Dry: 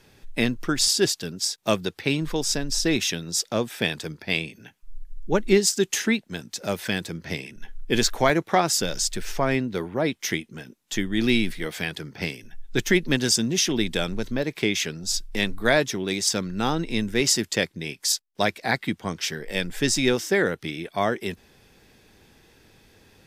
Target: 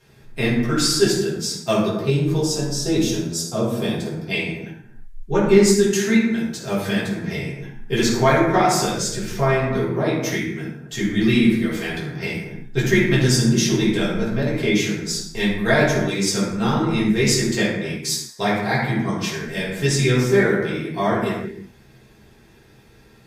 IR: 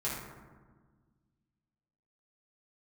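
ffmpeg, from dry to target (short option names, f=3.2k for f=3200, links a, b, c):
-filter_complex "[0:a]asettb=1/sr,asplit=3[a][b][c];[a]atrim=end=1.804[d];[b]atrim=start=1.8:end=4.31,asetpts=PTS-STARTPTS,afade=t=in:d=0.004:c=qsin,afade=t=out:st=2.506:d=0.004:c=qsin,equalizer=f=2k:w=1.4:g=-11[e];[c]atrim=start=4.306[f];[d][e]acrossfade=d=0.004:c1=hsin:c2=qsin[g];[g][f]acrossfade=d=0.004:c1=qsin:c2=hsin[h];[1:a]atrim=start_sample=2205,afade=t=out:st=0.42:d=0.01,atrim=end_sample=18963[i];[h][i]afir=irnorm=-1:irlink=0,volume=-1.5dB"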